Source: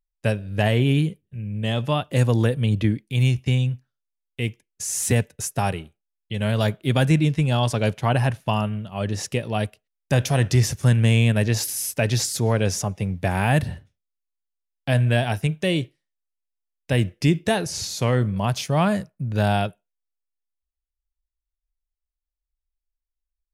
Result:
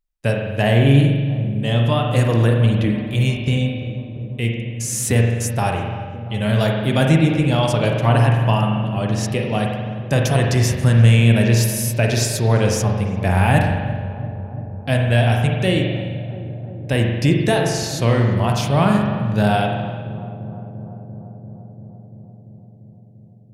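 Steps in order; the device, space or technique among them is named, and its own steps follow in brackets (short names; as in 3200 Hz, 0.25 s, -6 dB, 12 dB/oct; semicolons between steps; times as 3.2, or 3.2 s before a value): dub delay into a spring reverb (darkening echo 0.343 s, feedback 82%, low-pass 1100 Hz, level -14 dB; spring tank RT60 1.4 s, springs 43 ms, chirp 50 ms, DRR 1 dB); gain +2 dB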